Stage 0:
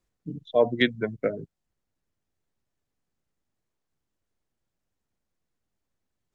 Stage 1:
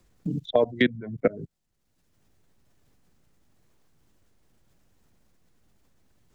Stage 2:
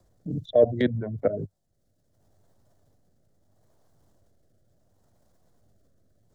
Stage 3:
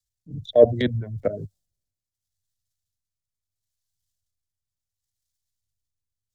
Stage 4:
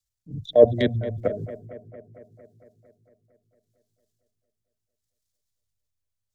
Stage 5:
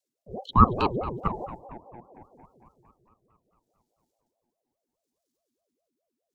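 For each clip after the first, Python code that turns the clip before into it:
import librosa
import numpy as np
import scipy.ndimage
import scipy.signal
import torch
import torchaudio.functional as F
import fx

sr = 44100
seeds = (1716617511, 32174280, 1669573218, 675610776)

y1 = fx.level_steps(x, sr, step_db=23)
y1 = fx.low_shelf(y1, sr, hz=210.0, db=8.0)
y1 = fx.band_squash(y1, sr, depth_pct=70)
y1 = y1 * librosa.db_to_amplitude(5.0)
y2 = fx.graphic_eq_15(y1, sr, hz=(100, 630, 2500), db=(8, 11, -11))
y2 = fx.transient(y2, sr, attack_db=-6, sustain_db=5)
y2 = fx.rotary(y2, sr, hz=0.7)
y3 = fx.band_widen(y2, sr, depth_pct=100)
y3 = y3 * librosa.db_to_amplitude(-1.5)
y4 = fx.echo_bbd(y3, sr, ms=227, stages=4096, feedback_pct=67, wet_db=-15.5)
y5 = fx.ring_lfo(y4, sr, carrier_hz=460.0, swing_pct=50, hz=4.8)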